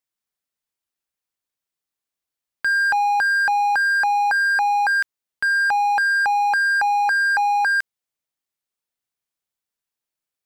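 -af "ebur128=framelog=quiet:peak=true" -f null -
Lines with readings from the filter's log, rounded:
Integrated loudness:
  I:         -18.2 LUFS
  Threshold: -28.4 LUFS
Loudness range:
  LRA:         5.6 LU
  Threshold: -39.7 LUFS
  LRA low:   -23.8 LUFS
  LRA high:  -18.3 LUFS
True peak:
  Peak:      -13.8 dBFS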